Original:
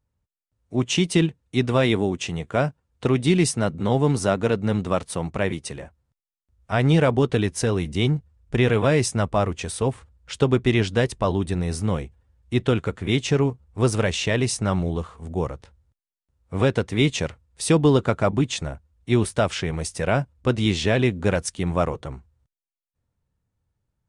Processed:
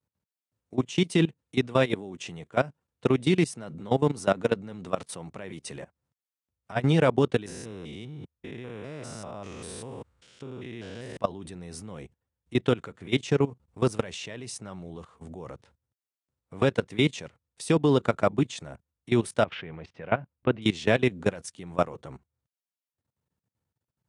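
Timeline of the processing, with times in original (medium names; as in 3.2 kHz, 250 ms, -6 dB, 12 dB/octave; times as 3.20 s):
7.46–11.17 s: spectrogram pixelated in time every 200 ms
19.44–20.62 s: low-pass 3 kHz 24 dB/octave
whole clip: level held to a coarse grid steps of 19 dB; high-pass 130 Hz 12 dB/octave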